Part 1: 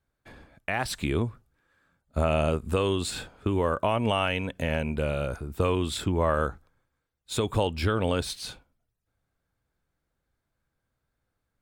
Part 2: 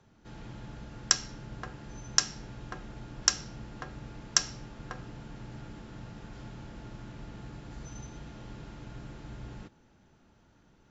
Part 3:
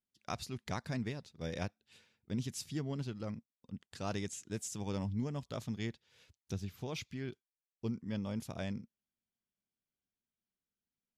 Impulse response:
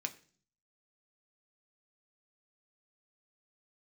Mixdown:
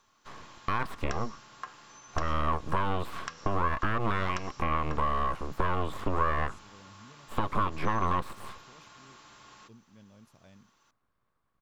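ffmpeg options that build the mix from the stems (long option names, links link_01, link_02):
-filter_complex "[0:a]highshelf=frequency=3500:gain=-9,aeval=exprs='abs(val(0))':channel_layout=same,volume=2dB[link_01];[1:a]highpass=frequency=1200:poles=1,highshelf=frequency=3200:gain=10,volume=-2dB[link_02];[2:a]adelay=1850,volume=-17.5dB[link_03];[link_01][link_02]amix=inputs=2:normalize=0,equalizer=frequency=1100:width_type=o:width=0.28:gain=14.5,acompressor=threshold=-24dB:ratio=2.5,volume=0dB[link_04];[link_03][link_04]amix=inputs=2:normalize=0,acrossover=split=2900[link_05][link_06];[link_06]acompressor=threshold=-53dB:ratio=4:attack=1:release=60[link_07];[link_05][link_07]amix=inputs=2:normalize=0"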